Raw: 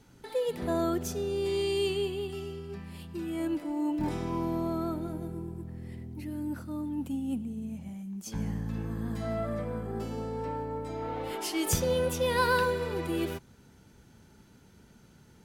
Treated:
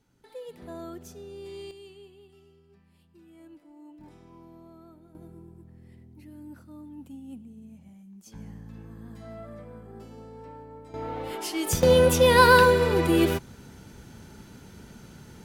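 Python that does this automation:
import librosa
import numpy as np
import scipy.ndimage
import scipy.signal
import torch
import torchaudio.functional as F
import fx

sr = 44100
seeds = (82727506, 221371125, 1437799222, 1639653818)

y = fx.gain(x, sr, db=fx.steps((0.0, -11.0), (1.71, -19.0), (5.15, -9.5), (10.94, 1.0), (11.83, 10.0)))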